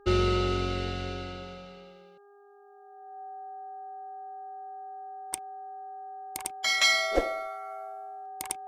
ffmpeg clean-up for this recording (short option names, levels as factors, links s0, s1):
-af "bandreject=f=405:t=h:w=4,bandreject=f=810:t=h:w=4,bandreject=f=1215:t=h:w=4,bandreject=f=1620:t=h:w=4,bandreject=f=760:w=30"